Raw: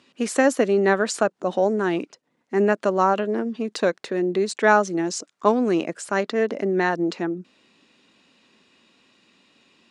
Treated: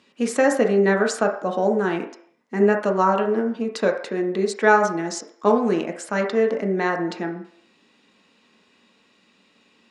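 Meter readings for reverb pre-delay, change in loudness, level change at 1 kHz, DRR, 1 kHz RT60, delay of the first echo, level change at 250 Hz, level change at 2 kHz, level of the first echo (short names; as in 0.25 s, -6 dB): 3 ms, +1.0 dB, +0.5 dB, 2.0 dB, 0.60 s, none, +0.5 dB, +1.0 dB, none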